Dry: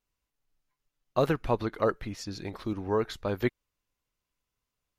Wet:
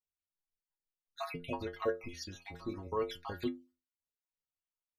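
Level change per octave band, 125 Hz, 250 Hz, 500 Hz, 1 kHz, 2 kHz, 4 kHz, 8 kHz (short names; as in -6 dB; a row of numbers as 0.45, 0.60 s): -13.5, -9.0, -9.0, -8.0, -8.0, -4.5, -4.5 dB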